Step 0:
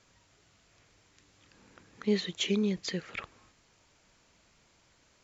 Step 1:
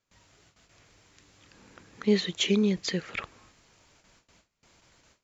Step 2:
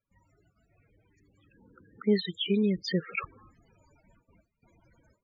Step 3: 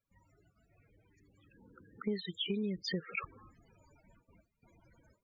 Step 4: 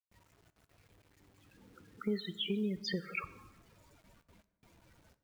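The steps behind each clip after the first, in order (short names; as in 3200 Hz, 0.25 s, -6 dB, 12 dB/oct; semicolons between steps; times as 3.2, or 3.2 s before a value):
gate with hold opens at -55 dBFS; gain +4.5 dB
vocal rider 0.5 s; loudest bins only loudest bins 16
compressor 4:1, threshold -32 dBFS, peak gain reduction 11.5 dB; gain -1.5 dB
bit-crush 11-bit; plate-style reverb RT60 1.2 s, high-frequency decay 0.6×, DRR 14 dB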